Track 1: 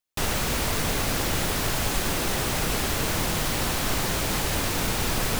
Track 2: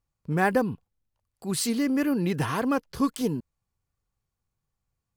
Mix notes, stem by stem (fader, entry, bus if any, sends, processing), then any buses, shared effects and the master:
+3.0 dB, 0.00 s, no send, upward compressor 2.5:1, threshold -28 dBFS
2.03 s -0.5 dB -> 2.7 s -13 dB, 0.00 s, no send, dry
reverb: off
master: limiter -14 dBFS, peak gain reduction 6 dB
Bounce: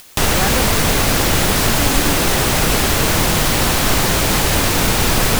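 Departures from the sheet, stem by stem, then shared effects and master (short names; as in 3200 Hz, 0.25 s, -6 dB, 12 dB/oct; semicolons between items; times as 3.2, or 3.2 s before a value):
stem 1 +3.0 dB -> +10.5 dB; master: missing limiter -14 dBFS, peak gain reduction 6 dB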